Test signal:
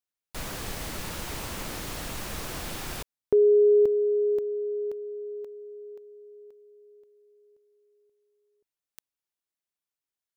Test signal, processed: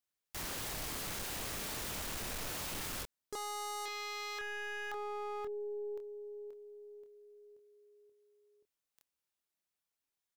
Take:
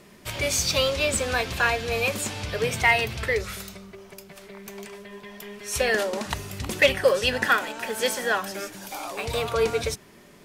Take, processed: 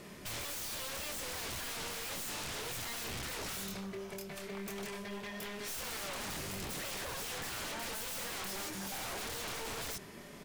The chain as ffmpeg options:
ffmpeg -i in.wav -filter_complex "[0:a]aeval=exprs='(tanh(31.6*val(0)+0.65)-tanh(0.65))/31.6':channel_layout=same,asplit=2[link_01][link_02];[link_02]adelay=26,volume=-6.5dB[link_03];[link_01][link_03]amix=inputs=2:normalize=0,aeval=exprs='0.0106*(abs(mod(val(0)/0.0106+3,4)-2)-1)':channel_layout=same,volume=3.5dB" out.wav

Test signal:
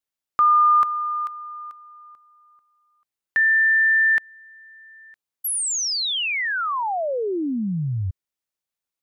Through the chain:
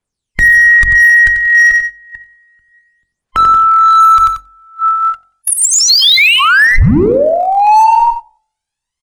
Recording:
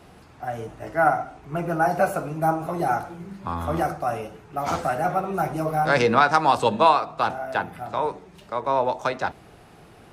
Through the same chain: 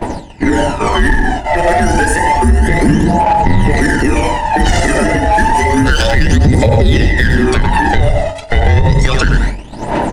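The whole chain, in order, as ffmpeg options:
ffmpeg -i in.wav -filter_complex "[0:a]afftfilt=real='real(if(between(b,1,1008),(2*floor((b-1)/48)+1)*48-b,b),0)':imag='imag(if(between(b,1,1008),(2*floor((b-1)/48)+1)*48-b,b),0)*if(between(b,1,1008),-1,1)':win_size=2048:overlap=0.75,lowshelf=frequency=120:gain=10.5,aresample=22050,aresample=44100,acrossover=split=99|4900[link_01][link_02][link_03];[link_01]acompressor=threshold=-29dB:ratio=5[link_04];[link_02]acompressor=threshold=-28dB:ratio=4[link_05];[link_03]acompressor=threshold=-39dB:ratio=6[link_06];[link_04][link_05][link_06]amix=inputs=3:normalize=0,aphaser=in_gain=1:out_gain=1:delay=1.6:decay=0.74:speed=0.3:type=triangular,asplit=2[link_07][link_08];[link_08]acrusher=bits=3:mix=0:aa=0.5,volume=-11.5dB[link_09];[link_07][link_09]amix=inputs=2:normalize=0,aecho=1:1:91|182|273:0.224|0.0649|0.0188,agate=range=-18dB:threshold=-37dB:ratio=3:release=143:detection=rms,bandreject=frequency=45.86:width_type=h:width=4,bandreject=frequency=91.72:width_type=h:width=4,bandreject=frequency=137.58:width_type=h:width=4,bandreject=frequency=183.44:width_type=h:width=4,bandreject=frequency=229.3:width_type=h:width=4,bandreject=frequency=275.16:width_type=h:width=4,bandreject=frequency=321.02:width_type=h:width=4,bandreject=frequency=366.88:width_type=h:width=4,bandreject=frequency=412.74:width_type=h:width=4,bandreject=frequency=458.6:width_type=h:width=4,bandreject=frequency=504.46:width_type=h:width=4,bandreject=frequency=550.32:width_type=h:width=4,bandreject=frequency=596.18:width_type=h:width=4,bandreject=frequency=642.04:width_type=h:width=4,bandreject=frequency=687.9:width_type=h:width=4,bandreject=frequency=733.76:width_type=h:width=4,bandreject=frequency=779.62:width_type=h:width=4,bandreject=frequency=825.48:width_type=h:width=4,bandreject=frequency=871.34:width_type=h:width=4,acompressor=threshold=-31dB:ratio=3:attack=2.6:release=51:knee=6:detection=rms,adynamicequalizer=threshold=0.00282:dfrequency=720:dqfactor=6.2:tfrequency=720:tqfactor=6.2:attack=5:release=100:ratio=0.417:range=3.5:mode=cutabove:tftype=bell,alimiter=level_in=27dB:limit=-1dB:release=50:level=0:latency=1,volume=-1dB" out.wav

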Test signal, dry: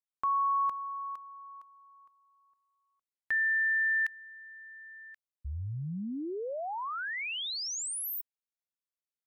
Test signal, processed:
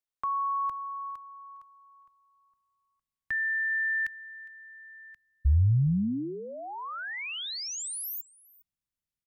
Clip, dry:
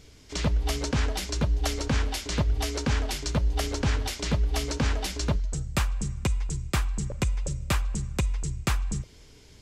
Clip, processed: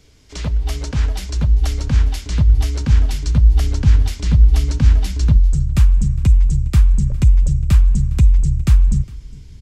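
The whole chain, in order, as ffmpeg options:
ffmpeg -i in.wav -filter_complex "[0:a]asubboost=boost=7.5:cutoff=180,acrossover=split=210|3000[link_01][link_02][link_03];[link_02]acompressor=threshold=-26dB:ratio=6:attack=12:release=378:knee=2.83:detection=peak[link_04];[link_01][link_04][link_03]amix=inputs=3:normalize=0,aecho=1:1:409:0.0708" out.wav

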